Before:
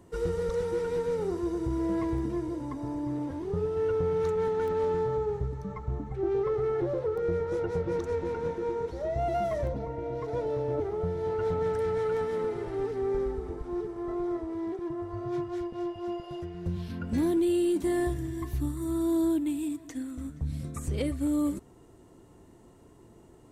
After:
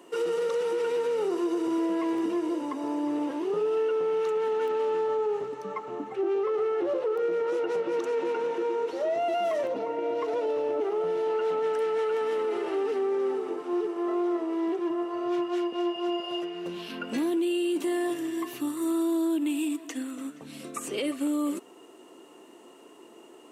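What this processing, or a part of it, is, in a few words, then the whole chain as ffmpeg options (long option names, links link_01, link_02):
laptop speaker: -af "highpass=frequency=290:width=0.5412,highpass=frequency=290:width=1.3066,equalizer=frequency=1200:width_type=o:width=0.26:gain=4,equalizer=frequency=2800:width_type=o:width=0.31:gain=11.5,alimiter=level_in=4dB:limit=-24dB:level=0:latency=1:release=54,volume=-4dB,volume=6.5dB"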